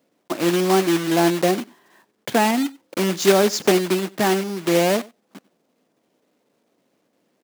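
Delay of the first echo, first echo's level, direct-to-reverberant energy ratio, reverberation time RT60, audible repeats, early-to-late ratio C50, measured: 94 ms, −22.5 dB, no reverb audible, no reverb audible, 1, no reverb audible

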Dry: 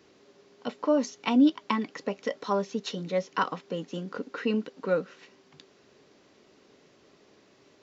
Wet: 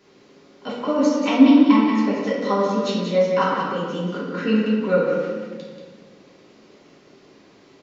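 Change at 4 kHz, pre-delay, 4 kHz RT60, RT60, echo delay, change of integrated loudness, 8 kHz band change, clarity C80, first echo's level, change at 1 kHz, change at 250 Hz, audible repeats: +7.5 dB, 3 ms, 0.95 s, 1.6 s, 184 ms, +9.5 dB, can't be measured, 1.0 dB, −5.0 dB, +8.5 dB, +10.5 dB, 1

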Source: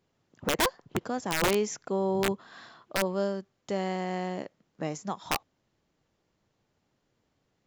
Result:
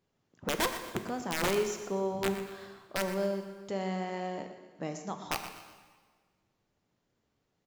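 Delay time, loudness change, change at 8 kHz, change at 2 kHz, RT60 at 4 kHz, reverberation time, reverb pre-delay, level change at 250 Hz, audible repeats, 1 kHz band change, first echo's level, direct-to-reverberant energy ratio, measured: 122 ms, −3.5 dB, −3.5 dB, −3.5 dB, 1.4 s, 1.5 s, 4 ms, −3.5 dB, 2, −3.5 dB, −12.5 dB, 5.5 dB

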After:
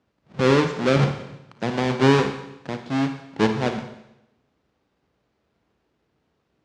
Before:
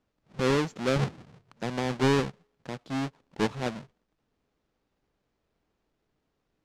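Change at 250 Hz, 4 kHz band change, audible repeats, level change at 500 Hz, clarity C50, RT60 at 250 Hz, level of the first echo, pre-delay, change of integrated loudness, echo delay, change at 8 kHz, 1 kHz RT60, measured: +7.5 dB, +6.0 dB, no echo audible, +7.5 dB, 8.0 dB, 0.90 s, no echo audible, 37 ms, +7.5 dB, no echo audible, +3.0 dB, 0.90 s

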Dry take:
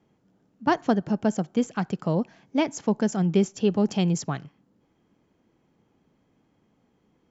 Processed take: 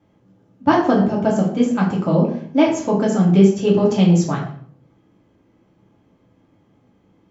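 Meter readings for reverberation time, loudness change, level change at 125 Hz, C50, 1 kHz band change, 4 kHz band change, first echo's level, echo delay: 0.55 s, +8.5 dB, +9.5 dB, 6.0 dB, +7.5 dB, +5.5 dB, no echo audible, no echo audible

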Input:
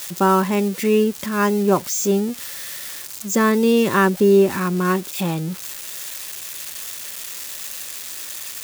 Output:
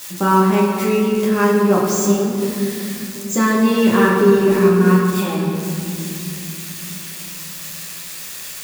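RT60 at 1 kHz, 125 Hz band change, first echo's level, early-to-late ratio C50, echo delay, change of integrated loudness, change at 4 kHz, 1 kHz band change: 2.6 s, +5.5 dB, no echo audible, 1.0 dB, no echo audible, +4.0 dB, +1.5 dB, +2.5 dB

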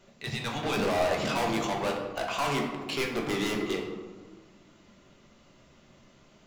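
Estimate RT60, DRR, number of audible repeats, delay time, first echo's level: 1.4 s, 0.0 dB, no echo audible, no echo audible, no echo audible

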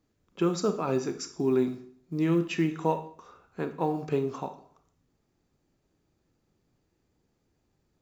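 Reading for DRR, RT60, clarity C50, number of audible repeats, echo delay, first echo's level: 8.0 dB, 0.55 s, 11.5 dB, no echo audible, no echo audible, no echo audible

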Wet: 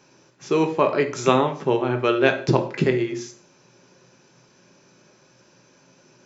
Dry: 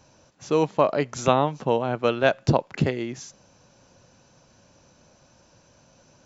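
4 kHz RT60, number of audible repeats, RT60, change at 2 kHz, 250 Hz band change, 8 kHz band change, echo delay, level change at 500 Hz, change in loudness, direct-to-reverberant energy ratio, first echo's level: 0.45 s, no echo audible, 0.45 s, +4.0 dB, +4.0 dB, can't be measured, no echo audible, +2.5 dB, +2.0 dB, 5.0 dB, no echo audible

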